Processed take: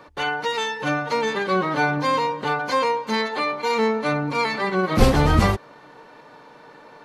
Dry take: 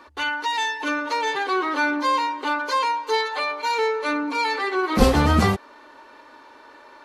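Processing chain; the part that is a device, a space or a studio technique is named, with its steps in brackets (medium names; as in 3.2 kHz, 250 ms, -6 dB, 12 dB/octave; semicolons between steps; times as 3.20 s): octave pedal (harmony voices -12 st -2 dB); trim -1 dB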